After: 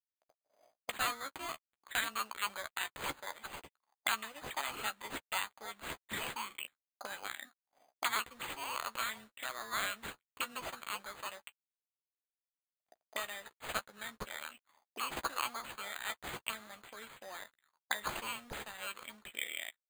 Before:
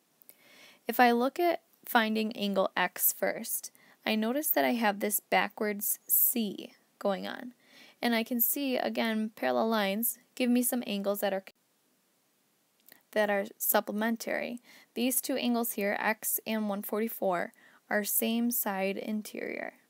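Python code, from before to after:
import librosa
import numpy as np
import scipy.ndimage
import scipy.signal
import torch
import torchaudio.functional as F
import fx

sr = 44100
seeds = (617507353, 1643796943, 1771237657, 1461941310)

y = fx.peak_eq(x, sr, hz=120.0, db=6.0, octaves=1.0)
y = np.sign(y) * np.maximum(np.abs(y) - 10.0 ** (-53.0 / 20.0), 0.0)
y = fx.auto_wah(y, sr, base_hz=630.0, top_hz=4300.0, q=5.4, full_db=-30.5, direction='up')
y = np.repeat(y[::8], 8)[:len(y)]
y = fx.doubler(y, sr, ms=14.0, db=-10)
y = y * librosa.db_to_amplitude(10.0)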